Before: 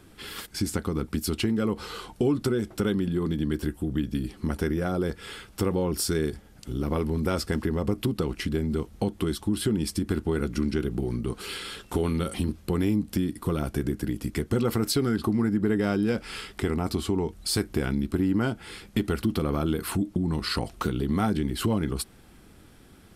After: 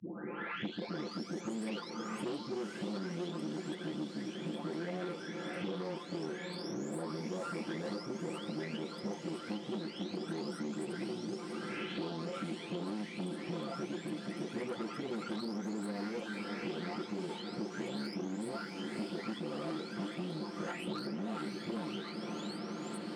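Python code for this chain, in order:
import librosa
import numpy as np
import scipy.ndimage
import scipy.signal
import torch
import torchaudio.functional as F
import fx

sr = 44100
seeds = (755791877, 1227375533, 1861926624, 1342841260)

p1 = fx.spec_delay(x, sr, highs='late', ms=947)
p2 = scipy.signal.sosfilt(scipy.signal.butter(4, 6600.0, 'lowpass', fs=sr, output='sos'), p1)
p3 = fx.notch(p2, sr, hz=1100.0, q=15.0)
p4 = fx.tube_stage(p3, sr, drive_db=28.0, bias=0.45)
p5 = scipy.signal.sosfilt(scipy.signal.butter(4, 190.0, 'highpass', fs=sr, output='sos'), p4)
p6 = p5 + fx.echo_diffused(p5, sr, ms=540, feedback_pct=72, wet_db=-10.5, dry=0)
p7 = fx.band_squash(p6, sr, depth_pct=100)
y = F.gain(torch.from_numpy(p7), -5.0).numpy()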